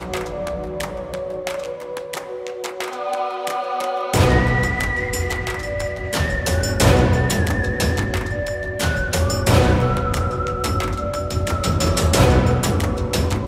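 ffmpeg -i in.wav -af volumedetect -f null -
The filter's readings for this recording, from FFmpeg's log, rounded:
mean_volume: -19.8 dB
max_volume: -1.5 dB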